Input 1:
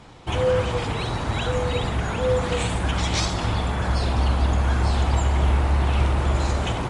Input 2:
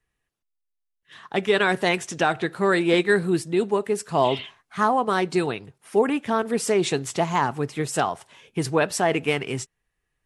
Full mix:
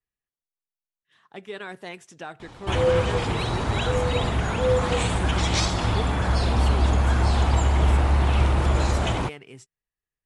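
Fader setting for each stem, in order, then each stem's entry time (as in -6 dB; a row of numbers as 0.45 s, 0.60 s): +0.5 dB, -16.0 dB; 2.40 s, 0.00 s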